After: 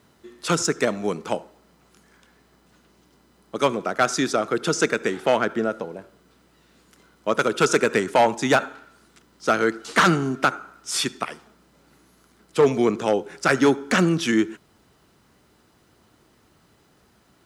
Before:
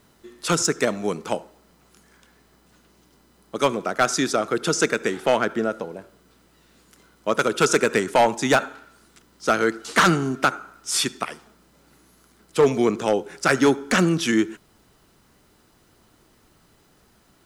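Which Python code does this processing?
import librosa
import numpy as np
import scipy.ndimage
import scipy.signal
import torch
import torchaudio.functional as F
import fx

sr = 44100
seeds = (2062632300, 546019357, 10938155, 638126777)

y = scipy.signal.sosfilt(scipy.signal.butter(2, 52.0, 'highpass', fs=sr, output='sos'), x)
y = fx.high_shelf(y, sr, hz=6800.0, db=-5.5)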